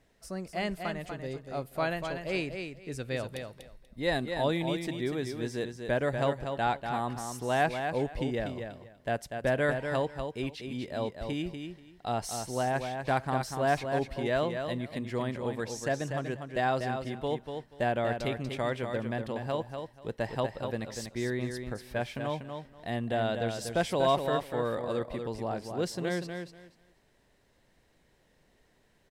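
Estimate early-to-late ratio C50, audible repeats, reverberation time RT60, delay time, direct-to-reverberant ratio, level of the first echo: no reverb audible, 2, no reverb audible, 242 ms, no reverb audible, −6.5 dB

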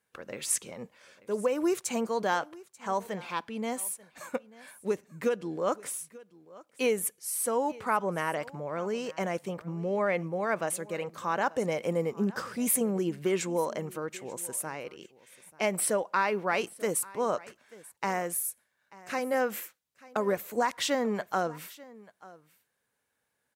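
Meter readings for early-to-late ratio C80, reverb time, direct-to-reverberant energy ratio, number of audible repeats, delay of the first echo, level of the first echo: no reverb audible, no reverb audible, no reverb audible, 1, 888 ms, −21.0 dB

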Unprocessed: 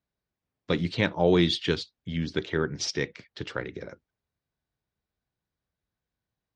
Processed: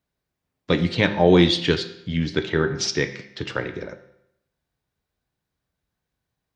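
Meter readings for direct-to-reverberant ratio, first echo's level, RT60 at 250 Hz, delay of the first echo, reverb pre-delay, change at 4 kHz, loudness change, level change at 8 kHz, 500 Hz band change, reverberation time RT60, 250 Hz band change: 7.5 dB, no echo audible, 0.80 s, no echo audible, 6 ms, +6.0 dB, +6.5 dB, +6.0 dB, +6.0 dB, 0.80 s, +6.5 dB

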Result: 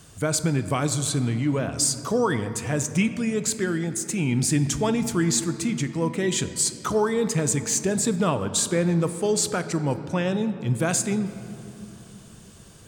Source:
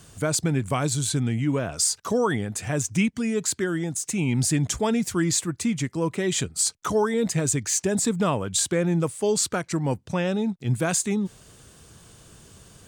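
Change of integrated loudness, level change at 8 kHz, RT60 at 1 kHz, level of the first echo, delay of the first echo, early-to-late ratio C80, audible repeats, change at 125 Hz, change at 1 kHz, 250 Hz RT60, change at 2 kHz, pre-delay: +0.5 dB, 0.0 dB, 2.8 s, no echo audible, no echo audible, 12.5 dB, no echo audible, +1.0 dB, +0.5 dB, 4.2 s, +0.5 dB, 6 ms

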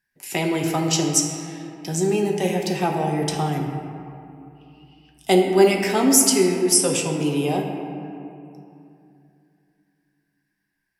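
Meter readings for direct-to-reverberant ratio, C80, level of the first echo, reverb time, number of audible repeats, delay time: 1.0 dB, 4.5 dB, no echo audible, 2.7 s, no echo audible, no echo audible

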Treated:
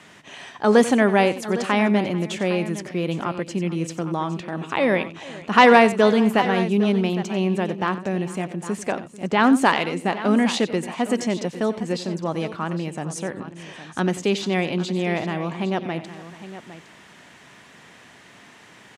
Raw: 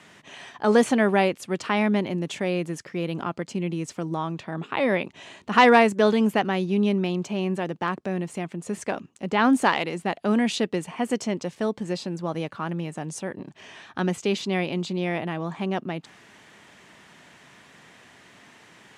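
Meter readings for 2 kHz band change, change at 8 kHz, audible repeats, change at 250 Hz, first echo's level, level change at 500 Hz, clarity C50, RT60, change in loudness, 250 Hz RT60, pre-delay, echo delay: +3.5 dB, +3.5 dB, 3, +3.5 dB, −15.0 dB, +3.5 dB, no reverb audible, no reverb audible, +3.5 dB, no reverb audible, no reverb audible, 91 ms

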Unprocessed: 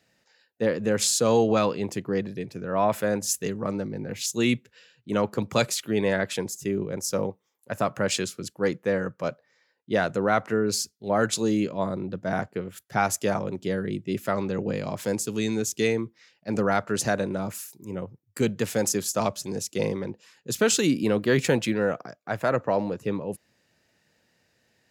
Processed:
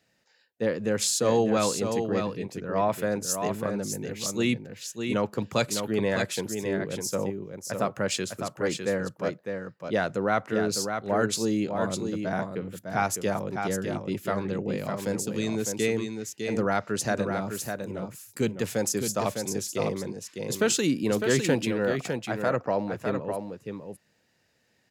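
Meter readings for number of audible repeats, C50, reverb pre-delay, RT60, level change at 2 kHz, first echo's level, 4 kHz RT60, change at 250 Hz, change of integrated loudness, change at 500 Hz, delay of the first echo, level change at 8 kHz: 1, no reverb audible, no reverb audible, no reverb audible, −1.5 dB, −6.0 dB, no reverb audible, −1.5 dB, −2.0 dB, −1.5 dB, 605 ms, −1.5 dB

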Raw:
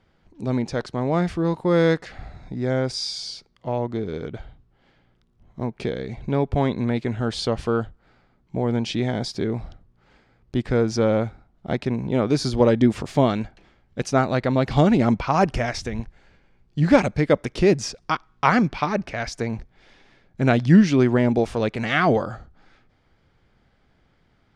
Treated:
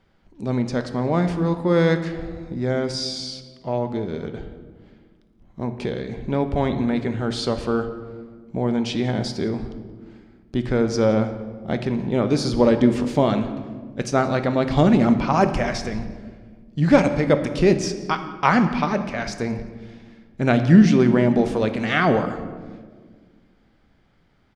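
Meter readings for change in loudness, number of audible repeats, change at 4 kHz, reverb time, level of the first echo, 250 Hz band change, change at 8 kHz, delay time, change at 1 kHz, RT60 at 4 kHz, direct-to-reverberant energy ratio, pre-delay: +1.0 dB, 1, +0.5 dB, 1.6 s, −22.5 dB, +2.0 dB, +0.5 dB, 176 ms, +0.5 dB, 0.90 s, 8.0 dB, 3 ms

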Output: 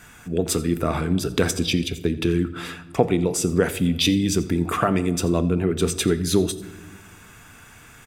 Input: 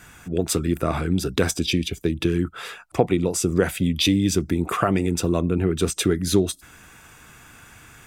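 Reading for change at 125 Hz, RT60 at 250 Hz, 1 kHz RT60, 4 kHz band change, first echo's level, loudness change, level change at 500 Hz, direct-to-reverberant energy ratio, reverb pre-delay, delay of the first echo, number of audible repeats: 0.0 dB, 2.0 s, 1.1 s, +0.5 dB, −19.5 dB, +0.5 dB, +0.5 dB, 11.5 dB, 4 ms, 85 ms, 1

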